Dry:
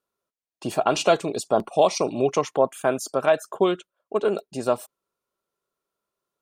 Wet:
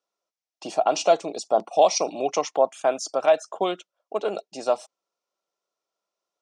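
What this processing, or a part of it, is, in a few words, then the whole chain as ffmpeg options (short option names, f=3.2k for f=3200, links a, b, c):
television speaker: -filter_complex "[0:a]highpass=f=220:w=0.5412,highpass=f=220:w=1.3066,equalizer=f=240:t=q:w=4:g=-9,equalizer=f=390:t=q:w=4:g=-8,equalizer=f=730:t=q:w=4:g=5,equalizer=f=1.1k:t=q:w=4:g=-3,equalizer=f=1.6k:t=q:w=4:g=-6,equalizer=f=5.6k:t=q:w=4:g=7,lowpass=f=7.5k:w=0.5412,lowpass=f=7.5k:w=1.3066,asettb=1/sr,asplit=3[a][b][c];[a]atrim=end=0.714[d];[b]atrim=start=0.71:end=1.71,asetpts=PTS-STARTPTS,afade=t=in:d=0.004:c=qsin,afade=t=out:st=0.996:d=0.004:c=qsin,equalizer=f=3k:t=o:w=2.5:g=-4.5[e];[c]atrim=start=1.706[f];[d][e]acrossfade=d=0.004:c1=hsin:c2=qsin[g];[g][f]acrossfade=d=0.004:c1=qsin:c2=hsin"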